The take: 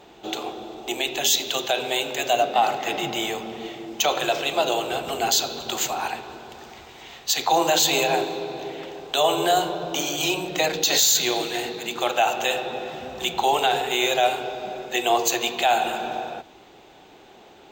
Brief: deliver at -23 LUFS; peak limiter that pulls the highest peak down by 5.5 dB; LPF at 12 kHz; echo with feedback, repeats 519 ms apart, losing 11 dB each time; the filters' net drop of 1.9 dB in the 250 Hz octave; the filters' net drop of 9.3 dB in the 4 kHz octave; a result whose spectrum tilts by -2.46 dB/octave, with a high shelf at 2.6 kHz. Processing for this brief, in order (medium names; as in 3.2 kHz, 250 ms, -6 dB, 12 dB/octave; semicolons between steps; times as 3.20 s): low-pass 12 kHz; peaking EQ 250 Hz -3 dB; treble shelf 2.6 kHz -5 dB; peaking EQ 4 kHz -7.5 dB; peak limiter -15.5 dBFS; feedback delay 519 ms, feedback 28%, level -11 dB; trim +4.5 dB